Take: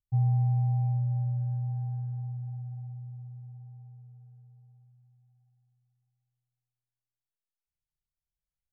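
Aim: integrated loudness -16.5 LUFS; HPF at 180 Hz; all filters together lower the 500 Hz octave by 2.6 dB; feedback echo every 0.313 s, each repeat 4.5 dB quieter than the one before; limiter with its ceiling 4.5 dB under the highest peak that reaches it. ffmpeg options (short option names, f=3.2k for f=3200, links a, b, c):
-af "highpass=180,equalizer=f=500:t=o:g=-3,alimiter=level_in=7dB:limit=-24dB:level=0:latency=1,volume=-7dB,aecho=1:1:313|626|939|1252|1565|1878|2191|2504|2817:0.596|0.357|0.214|0.129|0.0772|0.0463|0.0278|0.0167|0.01,volume=26.5dB"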